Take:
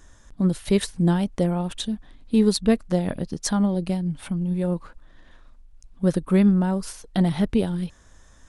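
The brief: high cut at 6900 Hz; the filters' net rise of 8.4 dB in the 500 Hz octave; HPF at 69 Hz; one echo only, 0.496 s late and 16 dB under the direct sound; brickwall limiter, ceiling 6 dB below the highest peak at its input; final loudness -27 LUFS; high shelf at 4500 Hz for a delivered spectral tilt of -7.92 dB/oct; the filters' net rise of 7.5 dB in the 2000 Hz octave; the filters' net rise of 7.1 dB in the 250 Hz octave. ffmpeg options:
-af "highpass=69,lowpass=6.9k,equalizer=f=250:t=o:g=9,equalizer=f=500:t=o:g=7,equalizer=f=2k:t=o:g=8,highshelf=f=4.5k:g=4,alimiter=limit=-6dB:level=0:latency=1,aecho=1:1:496:0.158,volume=-8.5dB"

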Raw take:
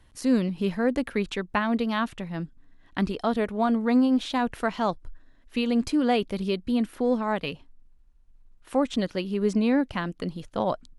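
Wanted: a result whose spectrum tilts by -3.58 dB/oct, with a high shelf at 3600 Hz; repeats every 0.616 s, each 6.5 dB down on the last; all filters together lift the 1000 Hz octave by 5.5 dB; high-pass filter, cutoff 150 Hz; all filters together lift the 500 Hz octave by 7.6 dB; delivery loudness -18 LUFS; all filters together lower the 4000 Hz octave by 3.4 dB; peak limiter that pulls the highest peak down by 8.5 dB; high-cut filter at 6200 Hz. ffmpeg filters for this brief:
-af "highpass=150,lowpass=6.2k,equalizer=f=500:t=o:g=8,equalizer=f=1k:t=o:g=4,highshelf=f=3.6k:g=4.5,equalizer=f=4k:t=o:g=-7.5,alimiter=limit=-13.5dB:level=0:latency=1,aecho=1:1:616|1232|1848|2464|3080|3696:0.473|0.222|0.105|0.0491|0.0231|0.0109,volume=6.5dB"

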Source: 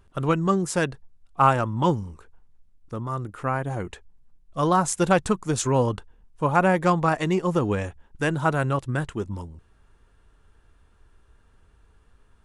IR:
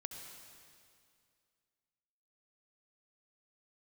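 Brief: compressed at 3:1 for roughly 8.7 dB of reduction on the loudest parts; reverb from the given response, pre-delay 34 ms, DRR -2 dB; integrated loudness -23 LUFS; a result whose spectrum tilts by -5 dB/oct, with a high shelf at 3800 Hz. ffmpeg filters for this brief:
-filter_complex "[0:a]highshelf=f=3.8k:g=7.5,acompressor=threshold=-25dB:ratio=3,asplit=2[a][b];[1:a]atrim=start_sample=2205,adelay=34[c];[b][c]afir=irnorm=-1:irlink=0,volume=4.5dB[d];[a][d]amix=inputs=2:normalize=0,volume=2.5dB"

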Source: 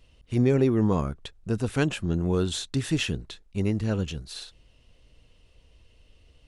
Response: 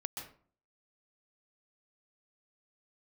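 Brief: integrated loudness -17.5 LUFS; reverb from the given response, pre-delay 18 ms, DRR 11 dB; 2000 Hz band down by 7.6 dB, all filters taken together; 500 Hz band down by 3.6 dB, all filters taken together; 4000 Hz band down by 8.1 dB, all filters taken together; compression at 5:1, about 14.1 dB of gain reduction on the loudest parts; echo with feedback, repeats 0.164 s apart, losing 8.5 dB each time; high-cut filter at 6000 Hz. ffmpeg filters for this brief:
-filter_complex "[0:a]lowpass=6k,equalizer=f=500:t=o:g=-4.5,equalizer=f=2k:t=o:g=-8.5,equalizer=f=4k:t=o:g=-6.5,acompressor=threshold=-35dB:ratio=5,aecho=1:1:164|328|492|656:0.376|0.143|0.0543|0.0206,asplit=2[a][b];[1:a]atrim=start_sample=2205,adelay=18[c];[b][c]afir=irnorm=-1:irlink=0,volume=-10.5dB[d];[a][d]amix=inputs=2:normalize=0,volume=21.5dB"

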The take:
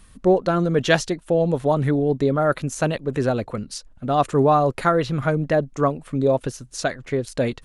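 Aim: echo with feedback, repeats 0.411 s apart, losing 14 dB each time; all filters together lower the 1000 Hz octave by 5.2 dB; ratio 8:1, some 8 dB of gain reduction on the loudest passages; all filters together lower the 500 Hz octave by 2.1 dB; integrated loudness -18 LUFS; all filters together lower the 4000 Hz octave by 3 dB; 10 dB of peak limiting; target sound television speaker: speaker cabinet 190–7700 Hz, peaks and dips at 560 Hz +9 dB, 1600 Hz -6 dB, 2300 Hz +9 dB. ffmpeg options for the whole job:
-af "equalizer=f=500:t=o:g=-7,equalizer=f=1k:t=o:g=-5.5,equalizer=f=4k:t=o:g=-4.5,acompressor=threshold=-24dB:ratio=8,alimiter=level_in=1dB:limit=-24dB:level=0:latency=1,volume=-1dB,highpass=f=190:w=0.5412,highpass=f=190:w=1.3066,equalizer=f=560:t=q:w=4:g=9,equalizer=f=1.6k:t=q:w=4:g=-6,equalizer=f=2.3k:t=q:w=4:g=9,lowpass=f=7.7k:w=0.5412,lowpass=f=7.7k:w=1.3066,aecho=1:1:411|822:0.2|0.0399,volume=16.5dB"

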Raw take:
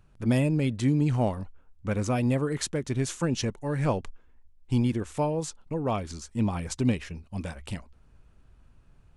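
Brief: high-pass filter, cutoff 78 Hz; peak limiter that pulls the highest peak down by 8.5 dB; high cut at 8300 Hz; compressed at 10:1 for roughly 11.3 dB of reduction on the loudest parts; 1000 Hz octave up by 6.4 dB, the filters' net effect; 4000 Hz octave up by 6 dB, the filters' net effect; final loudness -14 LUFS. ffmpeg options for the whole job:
-af "highpass=78,lowpass=8.3k,equalizer=f=1k:t=o:g=8,equalizer=f=4k:t=o:g=7.5,acompressor=threshold=-30dB:ratio=10,volume=23dB,alimiter=limit=-2.5dB:level=0:latency=1"

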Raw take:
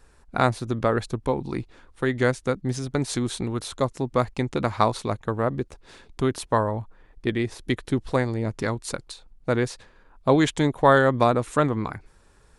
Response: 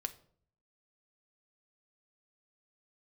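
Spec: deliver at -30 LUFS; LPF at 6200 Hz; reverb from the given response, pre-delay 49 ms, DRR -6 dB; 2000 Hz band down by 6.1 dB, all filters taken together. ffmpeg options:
-filter_complex "[0:a]lowpass=6.2k,equalizer=f=2k:t=o:g=-8.5,asplit=2[a][b];[1:a]atrim=start_sample=2205,adelay=49[c];[b][c]afir=irnorm=-1:irlink=0,volume=7dB[d];[a][d]amix=inputs=2:normalize=0,volume=-11.5dB"

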